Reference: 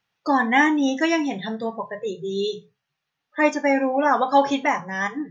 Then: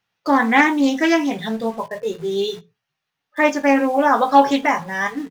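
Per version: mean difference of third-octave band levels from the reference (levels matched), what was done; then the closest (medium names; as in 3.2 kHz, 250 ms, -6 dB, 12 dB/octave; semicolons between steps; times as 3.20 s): 4.5 dB: in parallel at -8.5 dB: word length cut 6-bit, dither none; on the sum: doubling 18 ms -8.5 dB; loudspeaker Doppler distortion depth 0.16 ms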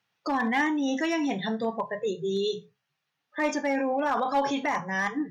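3.5 dB: high-pass 83 Hz 12 dB/octave; in parallel at -1 dB: compressor with a negative ratio -25 dBFS, ratio -0.5; on the sum: one-sided clip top -11 dBFS, bottom -7.5 dBFS; trim -8.5 dB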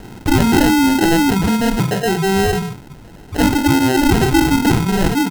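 18.0 dB: comb 0.9 ms, depth 98%; sample-and-hold 38×; level flattener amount 70%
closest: second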